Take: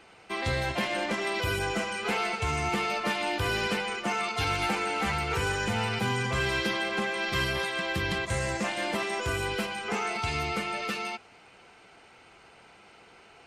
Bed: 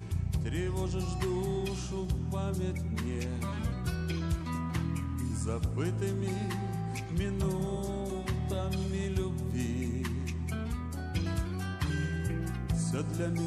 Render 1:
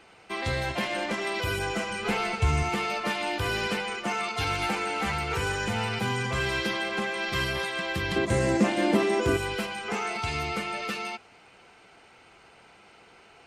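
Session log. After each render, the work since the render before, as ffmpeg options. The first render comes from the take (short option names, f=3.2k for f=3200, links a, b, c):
-filter_complex "[0:a]asettb=1/sr,asplit=3[a][b][c];[a]atrim=end=1.894[d];[b]atrim=start=1.89:end=2.63,asetpts=PTS-STARTPTS,afade=t=in:d=0.004:c=qsin,afade=t=out:st=0.736:d=0.004:c=qsin,lowshelf=f=170:g=11.5[e];[c]atrim=start=2.626[f];[d][e]acrossfade=d=0.004:c1=hsin:c2=qsin[g];[g][f]acrossfade=d=0.004:c1=qsin:c2=hsin,asettb=1/sr,asplit=3[h][i][j];[h]atrim=end=8.164[k];[i]atrim=start=8.16:end=9.37,asetpts=PTS-STARTPTS,afade=t=in:d=0.004:c=qsin,afade=t=out:st=1.206:d=0.004:c=qsin,equalizer=f=280:t=o:w=1.7:g=14.5[l];[j]atrim=start=9.366[m];[k][l]acrossfade=d=0.004:c1=hsin:c2=qsin[n];[n][m]acrossfade=d=0.004:c1=qsin:c2=hsin"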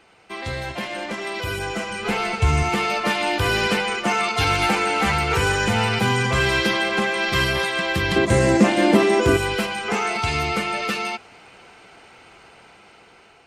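-af "dynaudnorm=f=950:g=5:m=9dB"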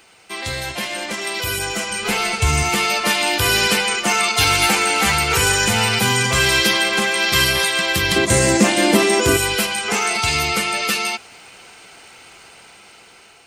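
-af "crystalizer=i=4:c=0"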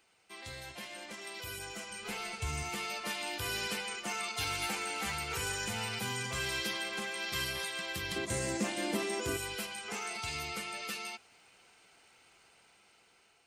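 -af "volume=-19.5dB"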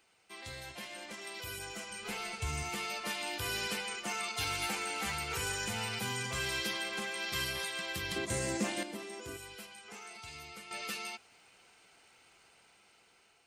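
-filter_complex "[0:a]asplit=3[a][b][c];[a]atrim=end=8.832[d];[b]atrim=start=8.828:end=10.712,asetpts=PTS-STARTPTS,volume=-9.5dB[e];[c]atrim=start=10.708[f];[d][e]acrossfade=d=0.004:c1=hsin:c2=hsin[g];[g][f]acrossfade=d=0.004:c1=hsin:c2=hsin"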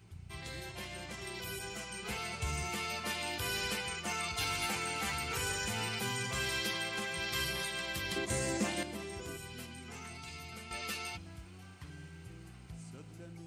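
-filter_complex "[1:a]volume=-17.5dB[a];[0:a][a]amix=inputs=2:normalize=0"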